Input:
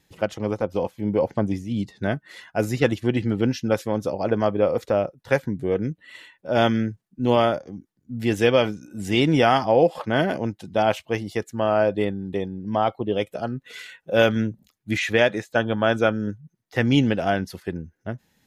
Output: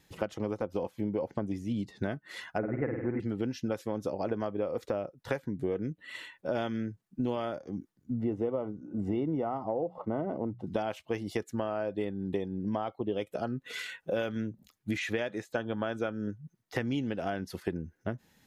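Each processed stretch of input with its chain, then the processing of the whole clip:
0:02.58–0:03.20: spike at every zero crossing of −22 dBFS + Butterworth low-pass 2,200 Hz 72 dB per octave + flutter between parallel walls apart 8.7 metres, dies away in 0.68 s
0:08.19–0:10.67: Savitzky-Golay smoothing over 65 samples + mains-hum notches 60/120/180 Hz
whole clip: parametric band 1,200 Hz +2 dB; downward compressor 10 to 1, threshold −31 dBFS; dynamic equaliser 330 Hz, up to +4 dB, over −48 dBFS, Q 1

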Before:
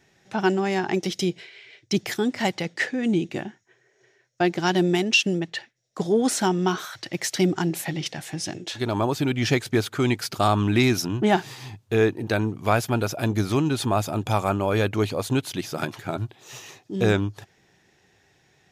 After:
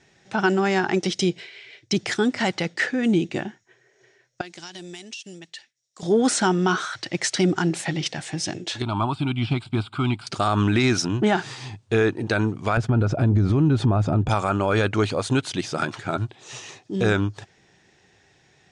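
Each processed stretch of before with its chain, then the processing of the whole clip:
0:04.41–0:06.03: first-order pre-emphasis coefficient 0.9 + downward compressor 10 to 1, threshold −36 dBFS
0:08.82–0:10.27: de-essing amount 90% + phaser with its sweep stopped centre 1,800 Hz, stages 6 + linearly interpolated sample-rate reduction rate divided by 2×
0:12.77–0:14.29: downward expander −34 dBFS + spectral tilt −4 dB per octave + downward compressor 1.5 to 1, threshold −19 dBFS
whole clip: elliptic low-pass filter 9,000 Hz, stop band 50 dB; dynamic equaliser 1,400 Hz, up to +7 dB, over −44 dBFS, Q 3.2; brickwall limiter −14.5 dBFS; level +3.5 dB

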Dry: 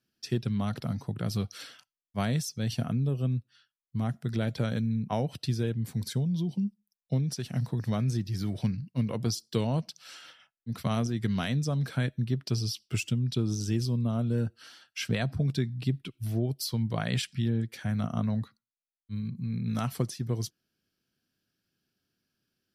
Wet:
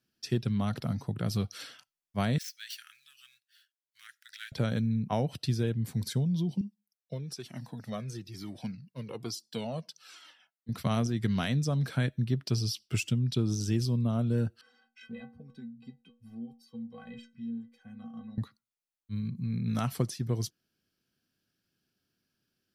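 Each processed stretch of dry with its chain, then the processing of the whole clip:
0:02.38–0:04.52: gap after every zero crossing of 0.053 ms + elliptic high-pass filter 1,600 Hz, stop band 60 dB
0:06.61–0:10.69: high-pass filter 200 Hz + flanger whose copies keep moving one way falling 1.1 Hz
0:14.61–0:18.38: low-pass filter 1,400 Hz 6 dB per octave + stiff-string resonator 230 Hz, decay 0.36 s, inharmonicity 0.03 + multiband upward and downward compressor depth 40%
whole clip: no processing

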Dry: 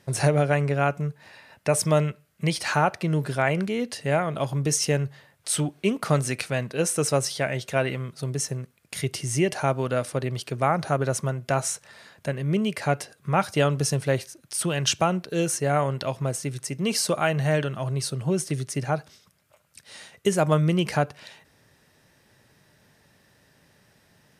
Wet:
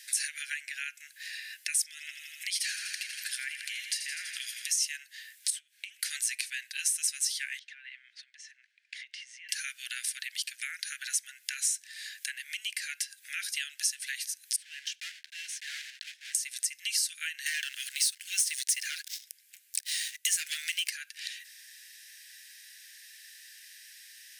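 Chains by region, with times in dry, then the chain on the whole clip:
0:01.84–0:04.78: downward compressor 2.5 to 1, threshold −26 dBFS + delay with a high-pass on its return 82 ms, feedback 75%, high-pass 1,600 Hz, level −9.5 dB
0:05.50–0:06.03: high-shelf EQ 2,400 Hz −9 dB + downward compressor 12 to 1, threshold −33 dBFS
0:07.59–0:09.49: downward compressor 16 to 1, threshold −34 dBFS + head-to-tape spacing loss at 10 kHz 37 dB
0:14.56–0:16.35: one scale factor per block 3 bits + low-pass filter 1,800 Hz + first difference
0:17.46–0:20.90: Bessel high-pass filter 920 Hz, order 8 + leveller curve on the samples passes 3
whole clip: Butterworth high-pass 1,600 Hz 96 dB per octave; downward compressor 3 to 1, threshold −48 dBFS; high-shelf EQ 3,200 Hz +10 dB; level +7 dB

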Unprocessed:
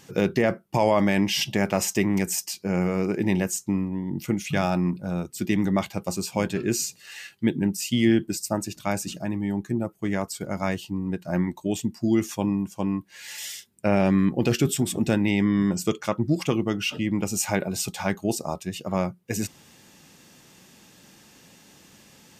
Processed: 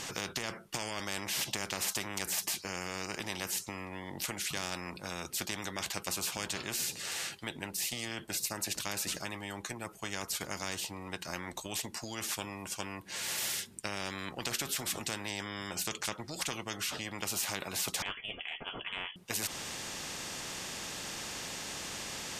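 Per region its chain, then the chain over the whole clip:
0:18.02–0:19.16: notch comb filter 240 Hz + voice inversion scrambler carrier 3,200 Hz
whole clip: low-pass filter 10,000 Hz 12 dB per octave; downward compressor 2 to 1, threshold −27 dBFS; every bin compressed towards the loudest bin 4 to 1; level −5 dB

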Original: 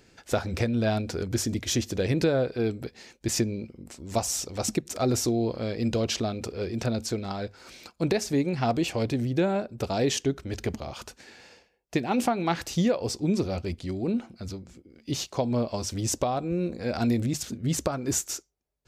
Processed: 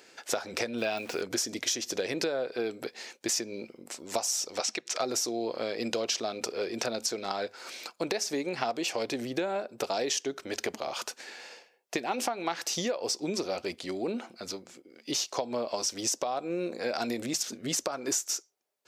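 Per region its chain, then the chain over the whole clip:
0:00.78–0:01.21: de-essing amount 100% + parametric band 2,600 Hz +11.5 dB 0.31 octaves + centre clipping without the shift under −45.5 dBFS
0:04.60–0:05.00: low-pass filter 2,800 Hz + spectral tilt +4.5 dB per octave
whole clip: high-pass filter 450 Hz 12 dB per octave; dynamic equaliser 5,600 Hz, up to +6 dB, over −48 dBFS, Q 2.4; downward compressor 6 to 1, threshold −33 dBFS; level +5.5 dB

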